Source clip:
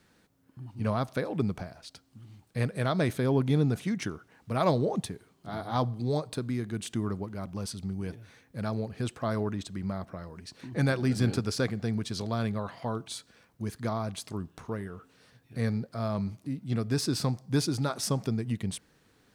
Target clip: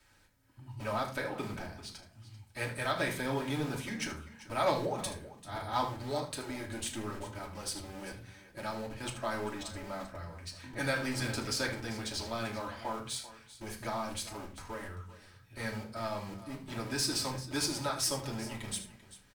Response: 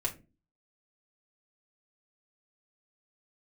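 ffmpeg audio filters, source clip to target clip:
-filter_complex "[0:a]equalizer=f=280:t=o:w=2.6:g=-13,acrossover=split=150|910[a][b][c];[a]aeval=exprs='(mod(224*val(0)+1,2)-1)/224':c=same[d];[d][b][c]amix=inputs=3:normalize=0,aecho=1:1:77|391:0.237|0.158[e];[1:a]atrim=start_sample=2205,asetrate=37485,aresample=44100[f];[e][f]afir=irnorm=-1:irlink=0,volume=-1.5dB" -ar 44100 -c:a adpcm_ima_wav

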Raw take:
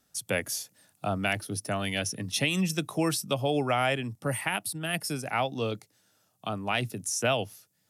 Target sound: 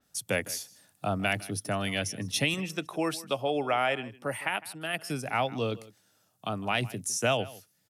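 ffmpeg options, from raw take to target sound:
-filter_complex "[0:a]asettb=1/sr,asplit=3[a][b][c];[a]atrim=end=2.544[d];[b]atrim=start=2.54:end=5.1,asetpts=PTS-STARTPTS,afade=t=in:d=0.004:c=qsin,afade=t=out:st=2.556:d=0.004:c=qsin,bass=f=250:g=-11,treble=f=4k:g=-7[e];[c]atrim=start=5.096[f];[d][e]acrossfade=d=0.004:c1=hsin:c2=qsin[g];[g][f]acrossfade=d=0.004:c1=qsin:c2=hsin,asplit=2[h][i];[i]adelay=157.4,volume=-19dB,highshelf=f=4k:g=-3.54[j];[h][j]amix=inputs=2:normalize=0,adynamicequalizer=threshold=0.00794:dfrequency=4200:dqfactor=0.7:tfrequency=4200:tqfactor=0.7:attack=5:release=100:ratio=0.375:range=2:mode=cutabove:tftype=highshelf"

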